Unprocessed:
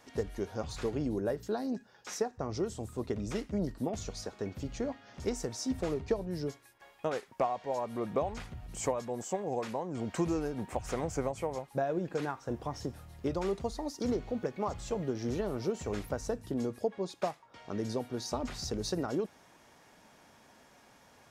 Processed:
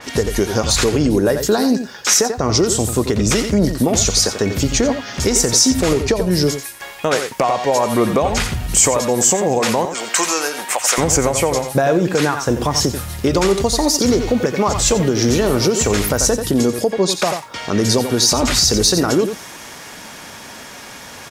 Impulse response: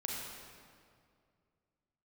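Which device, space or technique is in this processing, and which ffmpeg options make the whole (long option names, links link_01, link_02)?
mastering chain: -filter_complex "[0:a]asettb=1/sr,asplit=3[link_01][link_02][link_03];[link_01]atrim=end=9.854[link_04];[link_02]atrim=start=9.85:end=10.98,asetpts=PTS-STARTPTS,afade=type=in:duration=0.004:curve=qsin,afade=type=out:start_time=1.126:duration=0.004:curve=qsin,highpass=830[link_05];[link_03]atrim=start=10.976[link_06];[link_04][link_05]acrossfade=duration=0.004:curve1=hsin:curve2=qsin[link_07];[link_07][link_06]acrossfade=duration=0.004:curve1=qsin:curve2=hsin,equalizer=frequency=750:width_type=o:width=0.77:gain=-3,aecho=1:1:88:0.282,acompressor=threshold=-35dB:ratio=2,tiltshelf=frequency=1300:gain=-3.5,asoftclip=type=hard:threshold=-26dB,alimiter=level_in=30dB:limit=-1dB:release=50:level=0:latency=1,adynamicequalizer=threshold=0.0398:dfrequency=5100:dqfactor=0.7:tfrequency=5100:tqfactor=0.7:attack=5:release=100:ratio=0.375:range=2.5:mode=boostabove:tftype=highshelf,volume=-5dB"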